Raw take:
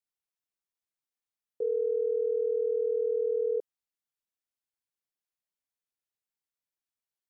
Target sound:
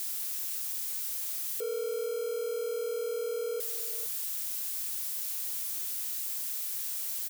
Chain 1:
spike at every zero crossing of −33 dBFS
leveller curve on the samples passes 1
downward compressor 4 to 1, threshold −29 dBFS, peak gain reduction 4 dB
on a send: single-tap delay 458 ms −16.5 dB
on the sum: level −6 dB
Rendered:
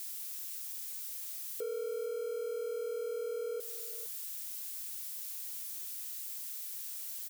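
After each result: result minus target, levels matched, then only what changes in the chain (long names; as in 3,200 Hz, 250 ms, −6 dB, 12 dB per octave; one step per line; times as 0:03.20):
spike at every zero crossing: distortion −8 dB; downward compressor: peak gain reduction +4 dB
change: spike at every zero crossing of −24.5 dBFS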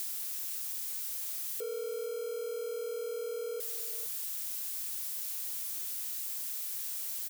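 downward compressor: peak gain reduction +4 dB
remove: downward compressor 4 to 1, threshold −29 dBFS, peak gain reduction 4 dB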